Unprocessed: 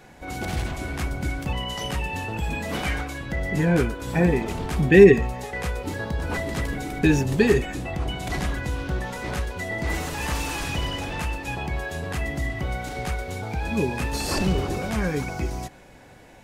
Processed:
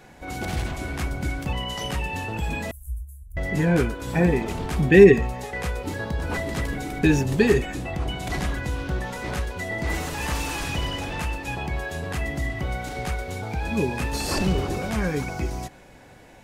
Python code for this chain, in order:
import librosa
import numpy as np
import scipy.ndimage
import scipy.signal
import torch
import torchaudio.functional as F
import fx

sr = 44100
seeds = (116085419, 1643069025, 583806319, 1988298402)

y = fx.cheby2_bandstop(x, sr, low_hz=170.0, high_hz=4700.0, order=4, stop_db=50, at=(2.71, 3.37))